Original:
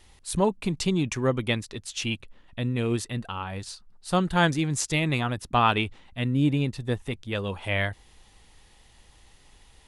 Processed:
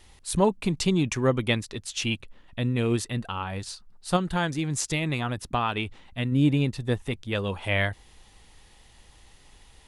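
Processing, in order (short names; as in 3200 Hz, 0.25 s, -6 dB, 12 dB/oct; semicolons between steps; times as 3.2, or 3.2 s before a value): 4.16–6.32 compressor 3:1, threshold -26 dBFS, peak gain reduction 8.5 dB; gain +1.5 dB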